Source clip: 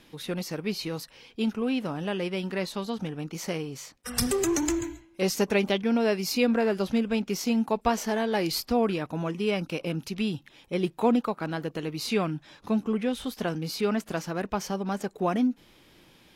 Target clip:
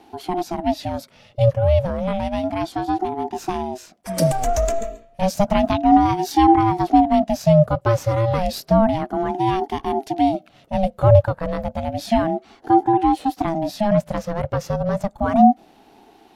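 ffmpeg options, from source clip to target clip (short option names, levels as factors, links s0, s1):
-af "equalizer=f=125:t=o:w=1:g=10,equalizer=f=250:t=o:w=1:g=12,equalizer=f=1000:t=o:w=1:g=3,aeval=exprs='val(0)*sin(2*PI*450*n/s+450*0.25/0.31*sin(2*PI*0.31*n/s))':c=same,volume=1.19"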